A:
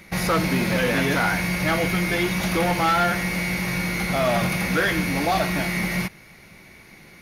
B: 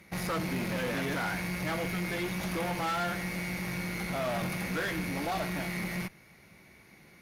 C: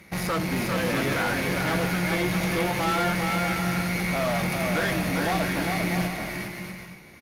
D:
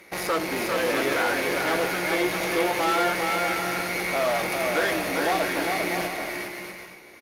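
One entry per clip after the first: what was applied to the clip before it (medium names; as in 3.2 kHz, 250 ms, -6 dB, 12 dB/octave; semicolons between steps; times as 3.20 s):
high-pass 46 Hz; peaking EQ 3.9 kHz -2.5 dB 2.5 oct; valve stage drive 21 dB, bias 0.45; trim -6.5 dB
bouncing-ball echo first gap 400 ms, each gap 0.6×, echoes 5; trim +5.5 dB
resonant low shelf 250 Hz -12 dB, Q 1.5; trim +1.5 dB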